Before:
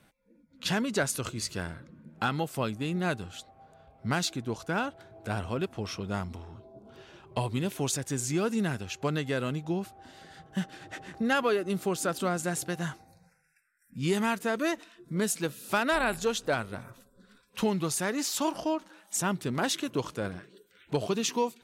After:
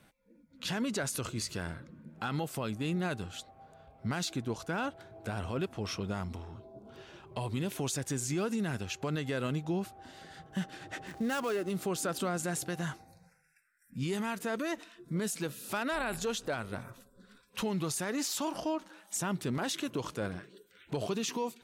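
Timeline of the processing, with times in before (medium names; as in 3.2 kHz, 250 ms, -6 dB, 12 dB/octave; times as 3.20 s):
11.07–11.77 s: dead-time distortion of 0.093 ms
whole clip: peak limiter -25 dBFS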